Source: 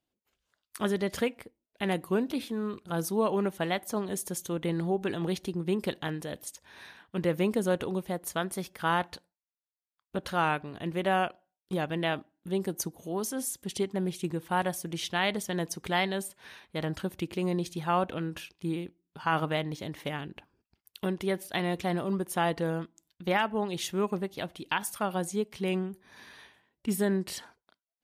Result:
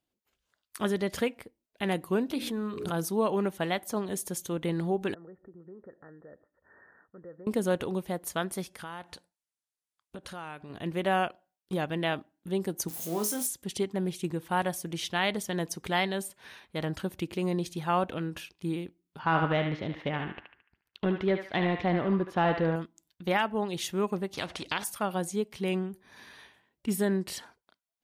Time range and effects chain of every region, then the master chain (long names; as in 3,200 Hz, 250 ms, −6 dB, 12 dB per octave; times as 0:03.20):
0:02.32–0:03.04: mains-hum notches 60/120/180/240/300/360/420/480/540 Hz + background raised ahead of every attack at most 47 dB per second
0:05.14–0:07.47: downward compressor 2.5 to 1, threshold −47 dBFS + Chebyshev low-pass with heavy ripple 1,900 Hz, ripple 9 dB
0:08.63–0:10.70: low-pass filter 11,000 Hz 24 dB per octave + high-shelf EQ 7,700 Hz +9 dB + downward compressor 3 to 1, threshold −41 dBFS
0:12.88–0:13.47: spike at every zero crossing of −31.5 dBFS + high-pass filter 44 Hz + flutter between parallel walls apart 4.1 metres, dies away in 0.22 s
0:19.19–0:22.76: leveller curve on the samples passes 1 + high-frequency loss of the air 250 metres + feedback echo with a band-pass in the loop 73 ms, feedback 50%, band-pass 1,800 Hz, level −4 dB
0:24.33–0:24.84: high-pass filter 57 Hz + high-frequency loss of the air 87 metres + every bin compressed towards the loudest bin 2 to 1
whole clip: no processing